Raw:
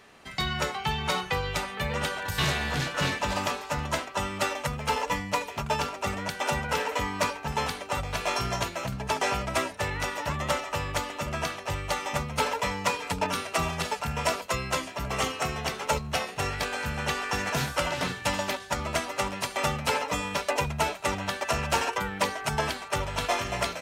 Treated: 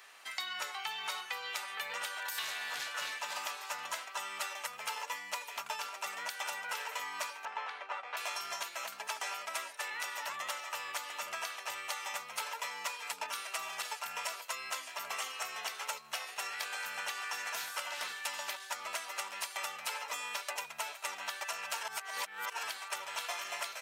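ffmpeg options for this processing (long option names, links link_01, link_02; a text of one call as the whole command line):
ffmpeg -i in.wav -filter_complex "[0:a]asettb=1/sr,asplit=3[link_01][link_02][link_03];[link_01]atrim=end=7.454[link_04];[link_02]atrim=start=7.45:end=8.17,asetpts=PTS-STARTPTS,afade=type=in:duration=0.004:curve=qsin,afade=type=out:start_time=0.716:duration=0.004:curve=qsin,highpass=340,lowpass=2100[link_05];[link_03]atrim=start=8.166[link_06];[link_04][link_05]acrossfade=duration=0.004:curve1=hsin:curve2=qsin[link_07];[link_07][link_06]acrossfade=duration=0.004:curve1=qsin:curve2=hsin,asettb=1/sr,asplit=3[link_08][link_09][link_10];[link_08]atrim=end=8.864[link_11];[link_09]atrim=start=8.86:end=9.92,asetpts=PTS-STARTPTS,afade=type=in:duration=0.004:curve=qsin,afade=type=out:start_time=1.056:duration=0.004:curve=qsin,highpass=220[link_12];[link_10]atrim=start=9.916[link_13];[link_11][link_12]acrossfade=duration=0.004:curve1=hsin:curve2=qsin[link_14];[link_14][link_13]acrossfade=duration=0.004:curve1=qsin:curve2=hsin,asplit=3[link_15][link_16][link_17];[link_15]atrim=end=21.832[link_18];[link_16]atrim=start=21.828:end=22.632,asetpts=PTS-STARTPTS,areverse[link_19];[link_17]atrim=start=22.628[link_20];[link_18][link_19]acrossfade=duration=0.004:curve1=hsin:curve2=hsin[link_21];[link_21][link_20]acrossfade=duration=0.004:curve1=hsin:curve2=hsin,highpass=1000,highshelf=frequency=11000:gain=10,acompressor=threshold=-36dB:ratio=6" out.wav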